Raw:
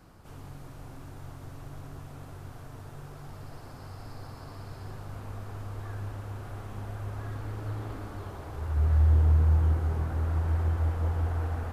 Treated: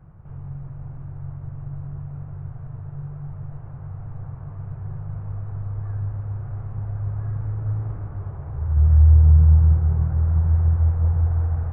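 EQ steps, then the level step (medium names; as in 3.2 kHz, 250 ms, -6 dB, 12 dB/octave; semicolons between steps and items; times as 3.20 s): Gaussian low-pass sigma 4.8 samples; resonant low shelf 190 Hz +7.5 dB, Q 3; 0.0 dB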